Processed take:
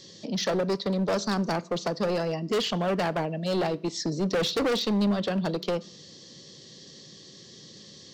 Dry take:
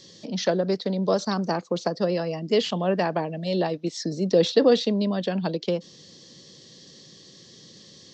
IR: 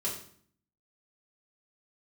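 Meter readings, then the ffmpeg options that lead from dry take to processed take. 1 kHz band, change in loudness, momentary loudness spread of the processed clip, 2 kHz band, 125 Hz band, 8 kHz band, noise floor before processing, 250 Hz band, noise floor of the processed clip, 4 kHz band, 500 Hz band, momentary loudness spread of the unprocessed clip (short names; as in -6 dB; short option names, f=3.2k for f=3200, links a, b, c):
-1.5 dB, -3.0 dB, 21 LU, +0.5 dB, -1.5 dB, n/a, -50 dBFS, -2.0 dB, -49 dBFS, -0.5 dB, -4.5 dB, 9 LU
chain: -filter_complex "[0:a]asoftclip=type=hard:threshold=-23dB,asplit=2[a][b];[1:a]atrim=start_sample=2205[c];[b][c]afir=irnorm=-1:irlink=0,volume=-20dB[d];[a][d]amix=inputs=2:normalize=0"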